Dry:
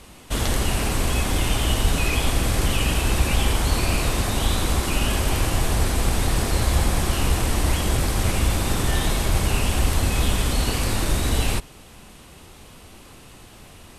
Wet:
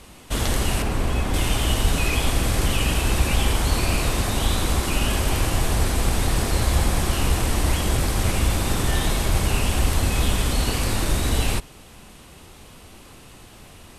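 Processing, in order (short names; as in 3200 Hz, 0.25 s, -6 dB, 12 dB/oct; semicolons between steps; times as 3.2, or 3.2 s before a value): 0.82–1.34 high shelf 3000 Hz -10 dB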